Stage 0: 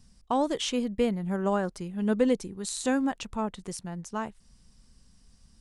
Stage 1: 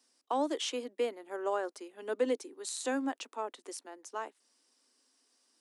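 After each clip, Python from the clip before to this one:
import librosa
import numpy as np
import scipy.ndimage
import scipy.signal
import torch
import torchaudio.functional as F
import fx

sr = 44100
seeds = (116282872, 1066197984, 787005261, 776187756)

y = scipy.signal.sosfilt(scipy.signal.butter(12, 270.0, 'highpass', fs=sr, output='sos'), x)
y = y * librosa.db_to_amplitude(-4.5)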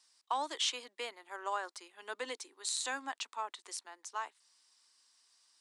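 y = fx.graphic_eq(x, sr, hz=(125, 250, 500, 1000, 2000, 4000, 8000), db=(-5, -9, -6, 9, 6, 10, 8))
y = y * librosa.db_to_amplitude(-7.0)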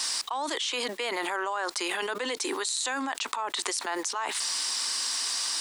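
y = fx.env_flatten(x, sr, amount_pct=100)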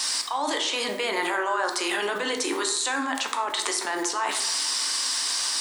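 y = fx.rev_plate(x, sr, seeds[0], rt60_s=0.86, hf_ratio=0.5, predelay_ms=0, drr_db=3.0)
y = y * librosa.db_to_amplitude(2.5)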